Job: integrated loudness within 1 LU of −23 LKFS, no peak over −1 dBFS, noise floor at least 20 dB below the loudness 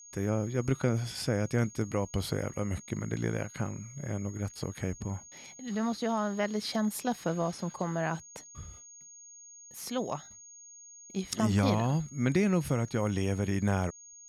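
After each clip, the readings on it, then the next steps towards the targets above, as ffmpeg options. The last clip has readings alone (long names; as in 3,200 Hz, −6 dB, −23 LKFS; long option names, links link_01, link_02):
interfering tone 6,600 Hz; level of the tone −49 dBFS; integrated loudness −32.0 LKFS; sample peak −15.5 dBFS; target loudness −23.0 LKFS
→ -af "bandreject=frequency=6600:width=30"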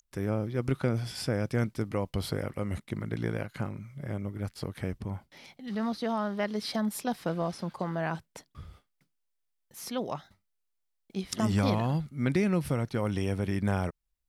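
interfering tone none found; integrated loudness −32.0 LKFS; sample peak −15.5 dBFS; target loudness −23.0 LKFS
→ -af "volume=9dB"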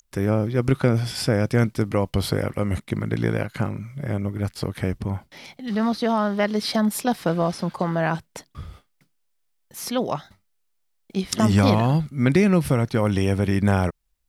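integrated loudness −23.0 LKFS; sample peak −6.5 dBFS; background noise floor −70 dBFS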